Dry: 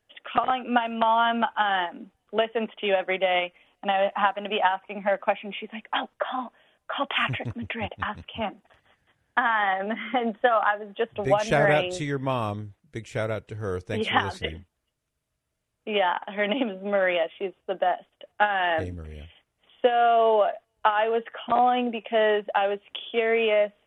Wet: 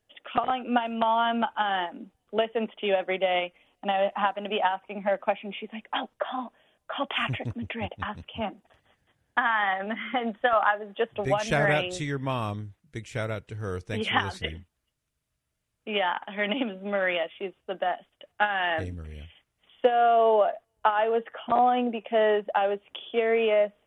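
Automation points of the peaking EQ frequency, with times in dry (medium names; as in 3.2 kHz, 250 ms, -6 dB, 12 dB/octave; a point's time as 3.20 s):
peaking EQ -4.5 dB 2 oct
1.6 kHz
from 9.38 s 440 Hz
from 10.53 s 81 Hz
from 11.25 s 550 Hz
from 19.85 s 2.7 kHz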